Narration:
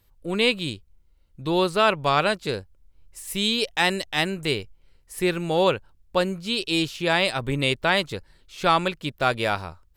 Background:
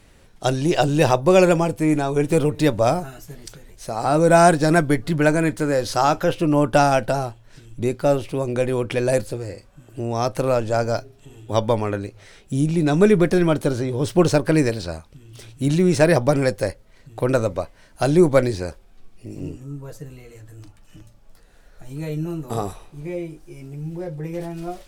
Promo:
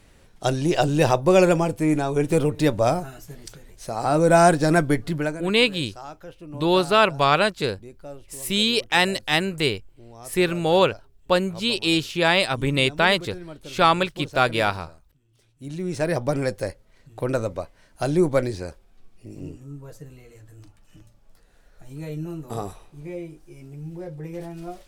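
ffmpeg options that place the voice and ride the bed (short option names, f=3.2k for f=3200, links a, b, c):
-filter_complex "[0:a]adelay=5150,volume=2.5dB[a];[1:a]volume=14dB,afade=t=out:st=5.01:d=0.42:silence=0.112202,afade=t=in:st=15.53:d=0.87:silence=0.158489[b];[a][b]amix=inputs=2:normalize=0"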